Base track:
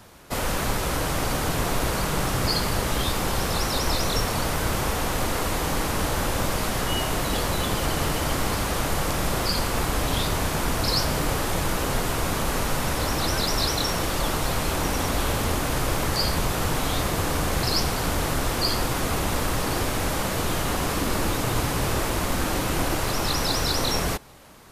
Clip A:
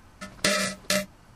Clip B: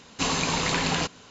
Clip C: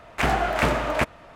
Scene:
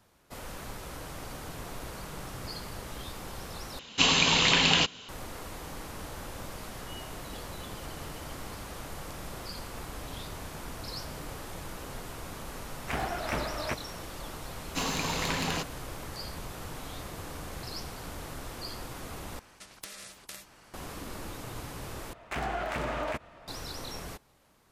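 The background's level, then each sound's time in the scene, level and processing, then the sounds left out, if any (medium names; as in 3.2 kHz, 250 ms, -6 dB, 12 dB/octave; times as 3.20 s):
base track -16 dB
3.79 s: replace with B -1.5 dB + peaking EQ 3.1 kHz +11.5 dB 0.79 oct
12.70 s: add C -11 dB
14.56 s: add B -6 dB + tracing distortion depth 0.042 ms
19.39 s: replace with A -17 dB + spectrum-flattening compressor 4:1
22.13 s: replace with C -5.5 dB + peak limiter -18.5 dBFS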